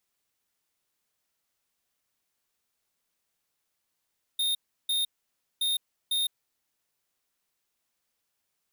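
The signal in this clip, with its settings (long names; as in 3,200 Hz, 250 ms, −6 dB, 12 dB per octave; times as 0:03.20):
beeps in groups square 3,680 Hz, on 0.16 s, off 0.34 s, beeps 2, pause 0.56 s, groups 2, −27 dBFS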